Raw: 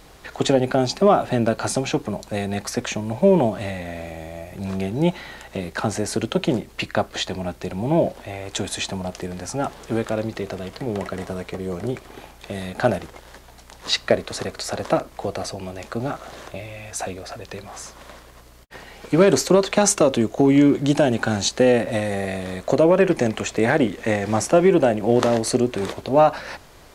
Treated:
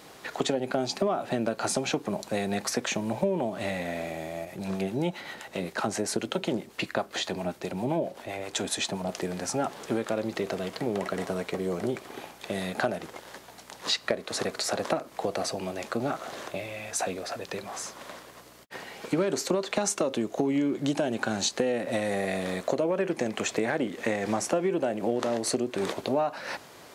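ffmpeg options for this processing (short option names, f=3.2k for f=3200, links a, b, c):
-filter_complex "[0:a]asettb=1/sr,asplit=3[a][b][c];[a]atrim=end=4.454[d];[b]atrim=start=4.45:end=9.09,asetpts=PTS-STARTPTS,afade=t=in:d=0.004:c=qsin,afade=t=out:st=4.636:d=0.004:c=qsin,acrossover=split=680[e][f];[e]aeval=exprs='val(0)*(1-0.5/2+0.5/2*cos(2*PI*7.6*n/s))':c=same[g];[f]aeval=exprs='val(0)*(1-0.5/2-0.5/2*cos(2*PI*7.6*n/s))':c=same[h];[g][h]amix=inputs=2:normalize=0[i];[c]atrim=start=9.086[j];[d][i]acrossfade=d=0.004:c1=hsin:c2=qsin[k];[k][j]acrossfade=d=0.004:c1=qsin:c2=hsin,highpass=170,acompressor=threshold=-24dB:ratio=6"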